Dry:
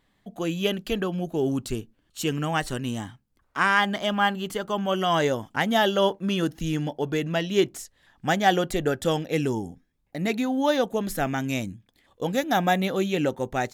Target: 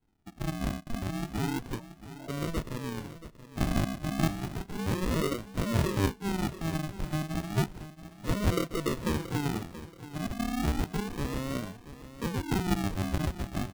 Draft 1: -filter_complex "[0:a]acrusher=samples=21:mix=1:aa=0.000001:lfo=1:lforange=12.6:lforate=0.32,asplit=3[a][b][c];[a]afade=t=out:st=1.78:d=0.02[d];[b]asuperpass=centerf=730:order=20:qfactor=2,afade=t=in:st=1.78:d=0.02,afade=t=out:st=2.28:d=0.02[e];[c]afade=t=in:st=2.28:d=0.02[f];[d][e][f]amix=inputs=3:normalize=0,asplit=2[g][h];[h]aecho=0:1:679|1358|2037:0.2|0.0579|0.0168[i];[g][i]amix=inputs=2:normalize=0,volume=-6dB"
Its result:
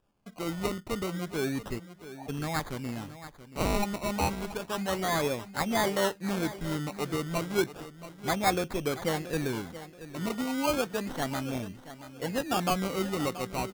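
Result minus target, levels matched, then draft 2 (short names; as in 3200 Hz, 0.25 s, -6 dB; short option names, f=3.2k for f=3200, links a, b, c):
decimation with a swept rate: distortion -20 dB
-filter_complex "[0:a]acrusher=samples=74:mix=1:aa=0.000001:lfo=1:lforange=44.4:lforate=0.32,asplit=3[a][b][c];[a]afade=t=out:st=1.78:d=0.02[d];[b]asuperpass=centerf=730:order=20:qfactor=2,afade=t=in:st=1.78:d=0.02,afade=t=out:st=2.28:d=0.02[e];[c]afade=t=in:st=2.28:d=0.02[f];[d][e][f]amix=inputs=3:normalize=0,asplit=2[g][h];[h]aecho=0:1:679|1358|2037:0.2|0.0579|0.0168[i];[g][i]amix=inputs=2:normalize=0,volume=-6dB"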